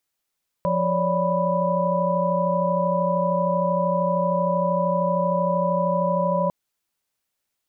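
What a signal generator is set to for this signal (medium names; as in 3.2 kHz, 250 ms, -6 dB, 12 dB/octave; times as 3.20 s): chord F3/C#5/D5/B5 sine, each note -24.5 dBFS 5.85 s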